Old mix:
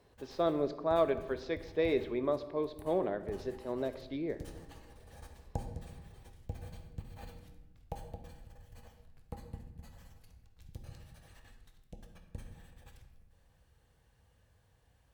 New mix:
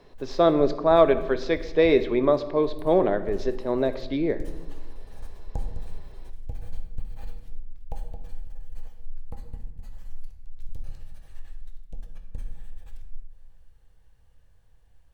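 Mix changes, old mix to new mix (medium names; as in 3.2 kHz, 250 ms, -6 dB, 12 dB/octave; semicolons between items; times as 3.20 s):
speech +11.5 dB; background: remove high-pass 79 Hz 12 dB/octave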